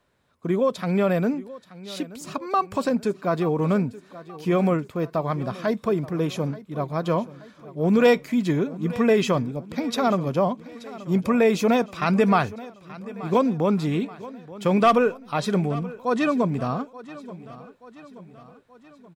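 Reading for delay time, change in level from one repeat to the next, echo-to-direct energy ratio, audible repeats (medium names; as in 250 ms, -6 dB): 879 ms, -5.5 dB, -16.5 dB, 4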